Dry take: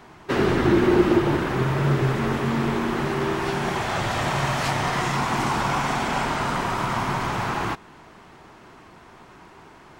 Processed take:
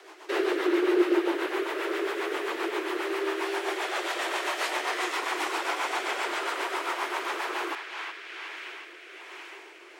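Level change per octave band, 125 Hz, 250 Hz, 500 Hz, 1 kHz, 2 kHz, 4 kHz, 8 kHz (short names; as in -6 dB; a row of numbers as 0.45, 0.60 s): under -40 dB, -7.5 dB, -4.0 dB, -6.5 dB, -2.5 dB, -2.0 dB, -4.0 dB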